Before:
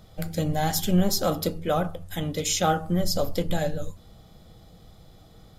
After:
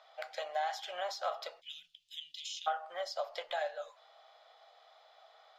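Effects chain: elliptic high-pass 650 Hz, stop band 60 dB, from 1.6 s 2900 Hz, from 2.66 s 640 Hz; compressor 3:1, threshold -34 dBFS, peak gain reduction 10.5 dB; air absorption 210 m; gain +2 dB

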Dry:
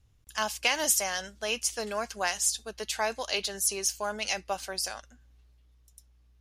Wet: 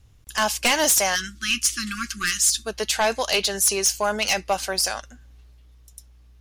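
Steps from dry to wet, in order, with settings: sine folder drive 10 dB, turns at -9.5 dBFS; spectral delete 1.16–2.67, 370–1100 Hz; gain -3.5 dB

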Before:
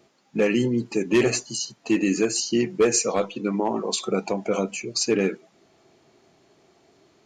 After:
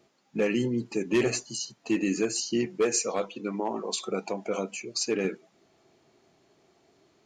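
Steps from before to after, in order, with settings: 2.66–5.25 low shelf 130 Hz -11.5 dB; gain -5 dB

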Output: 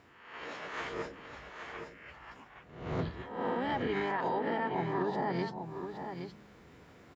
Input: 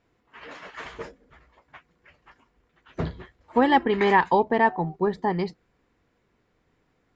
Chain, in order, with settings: spectral swells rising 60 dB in 0.64 s; HPF 64 Hz 12 dB/oct; de-hum 102.7 Hz, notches 3; reverse; upward compressor, threshold -41 dBFS; reverse; limiter -15 dBFS, peak gain reduction 9 dB; compressor 6:1, threshold -27 dBFS, peak gain reduction 8 dB; harmoniser -5 st -8 dB; on a send: echo 0.819 s -7.5 dB; on the sum: gain -3.5 dB

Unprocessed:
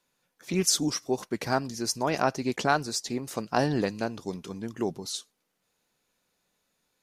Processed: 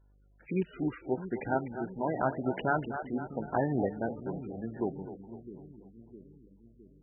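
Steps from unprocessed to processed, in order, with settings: Wiener smoothing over 9 samples; LPF 3800 Hz 6 dB/oct; notch 1100 Hz, Q 6.5; split-band echo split 360 Hz, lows 0.66 s, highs 0.25 s, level -10 dB; buzz 50 Hz, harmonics 34, -60 dBFS -9 dB/oct; gain -3 dB; MP3 8 kbps 24000 Hz

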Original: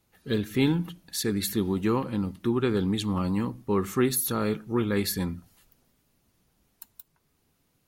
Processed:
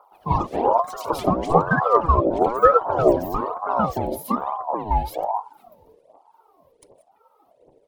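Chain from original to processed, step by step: trilling pitch shifter -8 st, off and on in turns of 0.395 s; bell 7200 Hz -12.5 dB 1.1 oct; compressor 6:1, threshold -33 dBFS, peak gain reduction 14 dB; phaser 1.3 Hz, delay 2.9 ms, feedback 80%; resonant low shelf 620 Hz +11 dB, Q 3; echoes that change speed 0.117 s, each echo +5 st, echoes 2; ring modulator with a swept carrier 680 Hz, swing 35%, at 1.1 Hz; gain -1 dB

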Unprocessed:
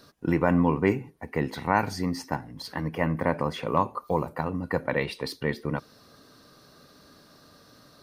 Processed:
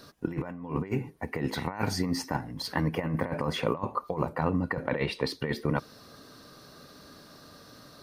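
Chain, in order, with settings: negative-ratio compressor -28 dBFS, ratio -0.5; 3.74–5.4 high shelf 6700 Hz -10 dB

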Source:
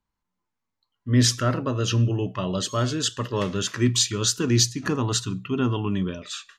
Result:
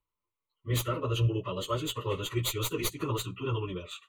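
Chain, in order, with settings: tracing distortion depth 0.04 ms; fixed phaser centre 1100 Hz, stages 8; plain phase-vocoder stretch 0.62×

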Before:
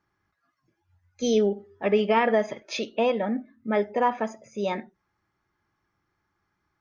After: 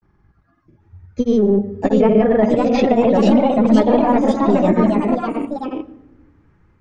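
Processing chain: in parallel at -10.5 dB: hard clip -28 dBFS, distortion -5 dB; on the sum: tilt -4 dB/oct; limiter -16 dBFS, peak gain reduction 10 dB; grains, pitch spread up and down by 0 st; echoes that change speed 0.781 s, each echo +2 st, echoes 3; on a send at -20 dB: reverb RT60 1.1 s, pre-delay 0.104 s; on the sum: gain +9 dB

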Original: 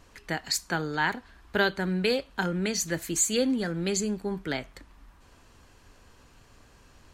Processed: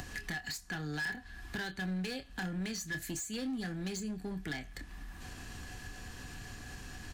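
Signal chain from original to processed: passive tone stack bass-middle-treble 6-0-2; upward compressor, threshold -33 dBFS; bell 410 Hz +4 dB 2.6 oct; small resonant body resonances 740/1700 Hz, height 17 dB, ringing for 65 ms; overloaded stage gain 35.5 dB; doubler 27 ms -10.5 dB; three-band squash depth 40%; gain +1.5 dB

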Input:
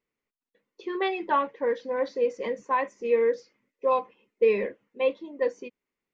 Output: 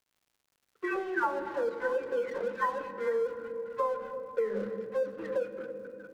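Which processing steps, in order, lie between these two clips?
spectral delay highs early, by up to 0.71 s; low-pass opened by the level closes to 350 Hz, open at -21.5 dBFS; LPF 2100 Hz 6 dB/oct; in parallel at +2.5 dB: vocal rider 2 s; on the sum: multi-head echo 0.209 s, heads first and third, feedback 62%, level -23 dB; crossover distortion -39 dBFS; gate -53 dBFS, range -10 dB; on a send at -12 dB: bell 150 Hz +14.5 dB 2.3 oct + reverb RT60 3.0 s, pre-delay 7 ms; on the sum: compressor 6:1, threshold -19 dBFS, peak gain reduction 8.5 dB; bell 1500 Hz +12 dB 0.44 oct; crackle 190/s -50 dBFS; gain -8 dB

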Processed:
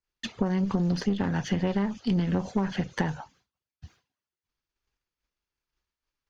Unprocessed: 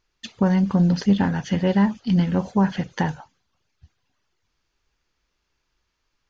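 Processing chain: one diode to ground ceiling -21 dBFS; compressor, threshold -22 dBFS, peak gain reduction 8 dB; expander -58 dBFS; three-band squash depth 40%

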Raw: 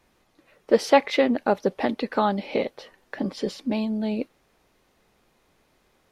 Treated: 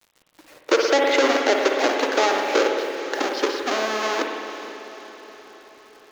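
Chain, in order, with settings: half-waves squared off; Chebyshev band-pass 300–6700 Hz, order 5; in parallel at +1 dB: compressor 6:1, threshold -26 dBFS, peak gain reduction 17 dB; on the sum: bit-crush 8-bit; on a send: diffused feedback echo 0.466 s, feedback 57%, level -13 dB; on the sum: spring tank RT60 2 s, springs 55 ms, chirp 80 ms, DRR 3.5 dB; maximiser +4.5 dB; gain -6 dB

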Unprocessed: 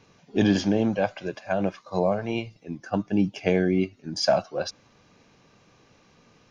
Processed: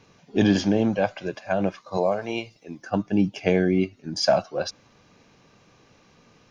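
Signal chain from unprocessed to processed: 1.97–2.82 tone controls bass -9 dB, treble +5 dB; gain +1.5 dB

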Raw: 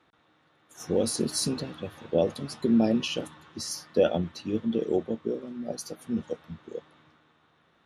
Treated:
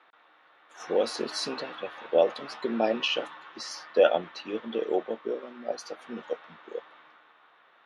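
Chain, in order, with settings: BPF 690–2800 Hz; gain +8.5 dB

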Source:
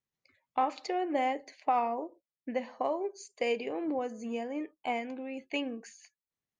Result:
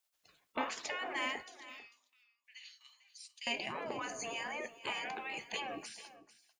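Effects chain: spectral gate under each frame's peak -15 dB weak; in parallel at -1.5 dB: negative-ratio compressor -55 dBFS; 1.43–3.47 on the sum: ladder high-pass 2700 Hz, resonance 30%; echo 0.445 s -16 dB; on a send at -17 dB: reverb, pre-delay 3 ms; on the sum: gain +5 dB

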